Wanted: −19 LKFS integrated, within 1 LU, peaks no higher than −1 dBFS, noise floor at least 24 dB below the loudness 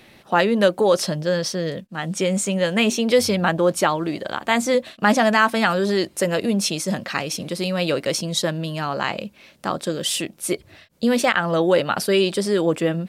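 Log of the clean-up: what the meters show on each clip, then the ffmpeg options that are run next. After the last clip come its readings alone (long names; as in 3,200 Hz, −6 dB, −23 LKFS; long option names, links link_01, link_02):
integrated loudness −21.0 LKFS; sample peak −4.0 dBFS; target loudness −19.0 LKFS
→ -af "volume=2dB"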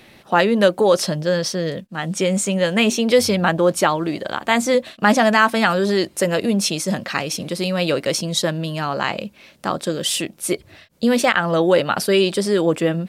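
integrated loudness −19.0 LKFS; sample peak −2.0 dBFS; background noise floor −49 dBFS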